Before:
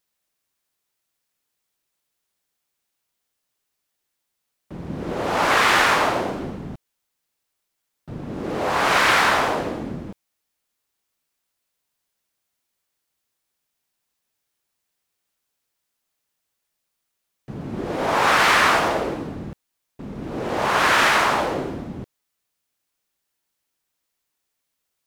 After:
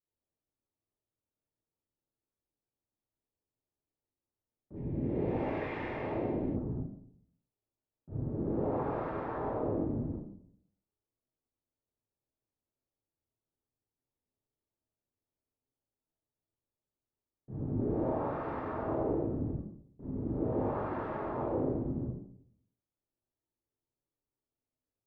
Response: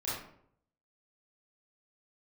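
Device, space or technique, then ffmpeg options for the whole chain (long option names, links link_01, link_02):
television next door: -filter_complex "[0:a]acompressor=threshold=-20dB:ratio=6,lowpass=490[link_01];[1:a]atrim=start_sample=2205[link_02];[link_01][link_02]afir=irnorm=-1:irlink=0,asettb=1/sr,asplit=3[link_03][link_04][link_05];[link_03]atrim=end=4.764[link_06];[link_04]atrim=start=4.76:end=6.56,asetpts=PTS-STARTPTS,afade=type=in:duration=0.004:curve=qsin,afade=type=out:start_time=1.796:duration=0.004:curve=qsin,highshelf=frequency=1700:width_type=q:width=3:gain=8[link_07];[link_05]atrim=start=6.556[link_08];[link_06][link_07]acrossfade=duration=0.004:curve1=hsin:curve2=qsin[link_09];[link_09][link_08]acrossfade=duration=0.004:curve1=qsin:curve2=hsin,volume=-7.5dB"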